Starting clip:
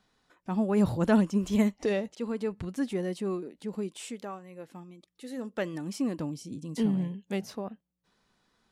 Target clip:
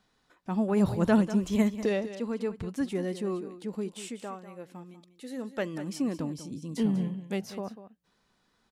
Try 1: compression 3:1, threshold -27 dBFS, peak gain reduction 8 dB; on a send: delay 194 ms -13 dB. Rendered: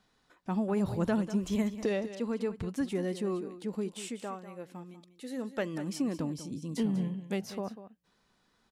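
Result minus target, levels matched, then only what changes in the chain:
compression: peak gain reduction +8 dB
remove: compression 3:1, threshold -27 dBFS, peak gain reduction 8 dB

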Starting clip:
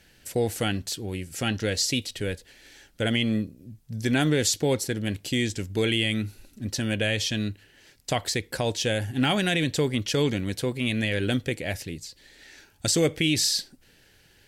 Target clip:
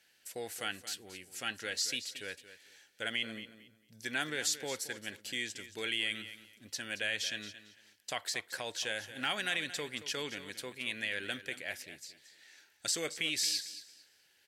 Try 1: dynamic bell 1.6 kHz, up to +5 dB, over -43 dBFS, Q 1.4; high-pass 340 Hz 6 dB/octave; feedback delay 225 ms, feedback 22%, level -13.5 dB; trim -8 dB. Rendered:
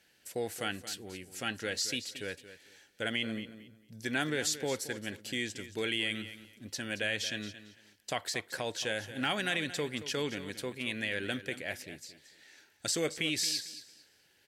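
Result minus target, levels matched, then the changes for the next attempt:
250 Hz band +6.5 dB
change: high-pass 1.1 kHz 6 dB/octave

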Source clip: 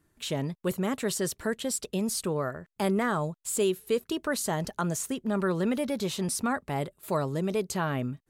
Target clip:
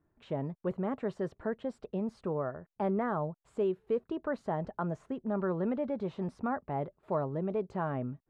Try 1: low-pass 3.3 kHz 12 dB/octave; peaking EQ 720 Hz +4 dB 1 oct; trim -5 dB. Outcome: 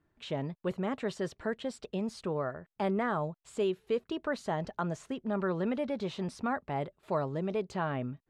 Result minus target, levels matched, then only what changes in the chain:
4 kHz band +13.0 dB
change: low-pass 1.3 kHz 12 dB/octave

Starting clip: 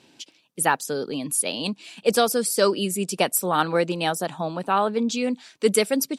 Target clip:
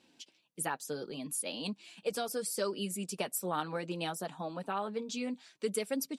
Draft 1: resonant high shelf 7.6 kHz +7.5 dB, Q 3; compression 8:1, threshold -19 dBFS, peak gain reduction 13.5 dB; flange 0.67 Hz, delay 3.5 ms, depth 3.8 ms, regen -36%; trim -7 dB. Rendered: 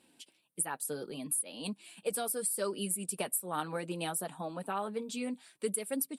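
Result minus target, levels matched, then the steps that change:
8 kHz band +3.5 dB
remove: resonant high shelf 7.6 kHz +7.5 dB, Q 3

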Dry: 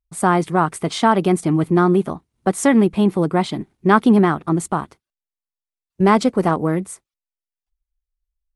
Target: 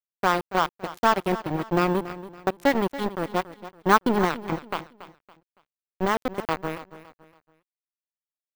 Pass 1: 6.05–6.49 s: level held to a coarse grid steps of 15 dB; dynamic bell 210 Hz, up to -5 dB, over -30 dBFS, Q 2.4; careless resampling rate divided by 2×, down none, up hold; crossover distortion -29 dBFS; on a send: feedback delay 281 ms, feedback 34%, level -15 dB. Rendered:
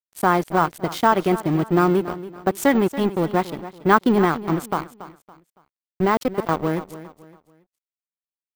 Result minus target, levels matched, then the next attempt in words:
crossover distortion: distortion -11 dB
6.05–6.49 s: level held to a coarse grid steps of 15 dB; dynamic bell 210 Hz, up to -5 dB, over -30 dBFS, Q 2.4; careless resampling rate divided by 2×, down none, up hold; crossover distortion -17.5 dBFS; on a send: feedback delay 281 ms, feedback 34%, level -15 dB

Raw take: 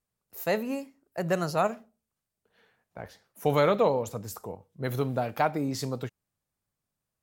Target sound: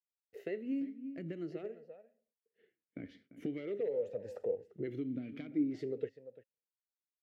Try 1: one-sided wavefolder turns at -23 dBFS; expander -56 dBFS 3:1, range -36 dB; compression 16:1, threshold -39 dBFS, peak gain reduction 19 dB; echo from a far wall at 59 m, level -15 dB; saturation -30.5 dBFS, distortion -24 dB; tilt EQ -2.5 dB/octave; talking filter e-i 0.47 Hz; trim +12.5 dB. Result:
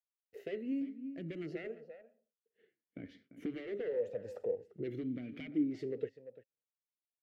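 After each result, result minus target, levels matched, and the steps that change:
one-sided wavefolder: distortion +19 dB; saturation: distortion +11 dB
change: one-sided wavefolder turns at -14.5 dBFS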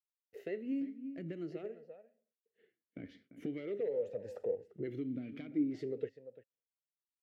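saturation: distortion +13 dB
change: saturation -22.5 dBFS, distortion -35 dB

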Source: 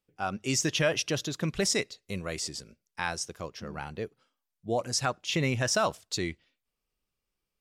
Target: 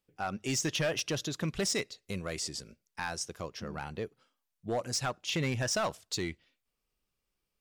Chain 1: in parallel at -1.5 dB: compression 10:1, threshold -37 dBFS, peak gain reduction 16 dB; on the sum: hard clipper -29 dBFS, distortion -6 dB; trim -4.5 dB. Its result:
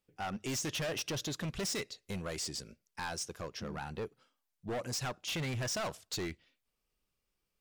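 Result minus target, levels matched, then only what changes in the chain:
hard clipper: distortion +9 dB
change: hard clipper -21 dBFS, distortion -15 dB

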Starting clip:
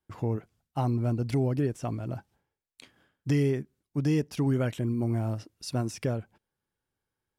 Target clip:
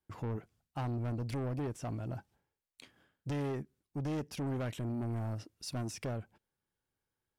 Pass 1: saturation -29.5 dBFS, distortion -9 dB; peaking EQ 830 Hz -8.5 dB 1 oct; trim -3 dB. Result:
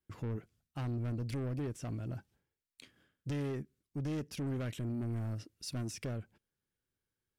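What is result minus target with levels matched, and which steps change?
1 kHz band -6.0 dB
remove: peaking EQ 830 Hz -8.5 dB 1 oct

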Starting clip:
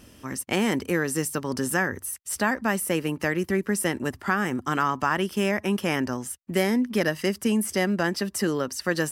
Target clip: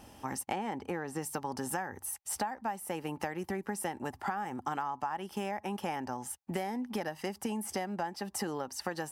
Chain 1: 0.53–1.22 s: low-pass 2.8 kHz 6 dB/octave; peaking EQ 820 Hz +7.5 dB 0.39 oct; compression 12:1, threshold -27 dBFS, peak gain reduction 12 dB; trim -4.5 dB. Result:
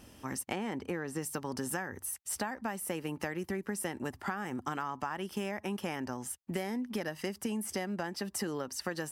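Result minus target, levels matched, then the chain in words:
1 kHz band -4.5 dB
0.53–1.22 s: low-pass 2.8 kHz 6 dB/octave; peaking EQ 820 Hz +19.5 dB 0.39 oct; compression 12:1, threshold -27 dBFS, peak gain reduction 18.5 dB; trim -4.5 dB

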